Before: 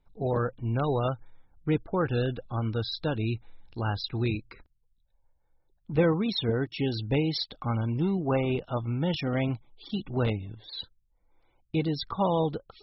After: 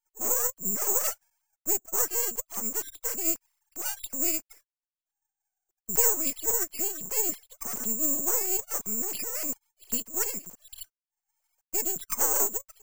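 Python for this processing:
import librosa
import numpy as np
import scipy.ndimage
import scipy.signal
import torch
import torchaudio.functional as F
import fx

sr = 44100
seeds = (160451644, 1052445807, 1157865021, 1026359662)

y = fx.sine_speech(x, sr)
y = np.maximum(y, 0.0)
y = (np.kron(scipy.signal.resample_poly(y, 1, 6), np.eye(6)[0]) * 6)[:len(y)]
y = y * librosa.db_to_amplitude(-5.5)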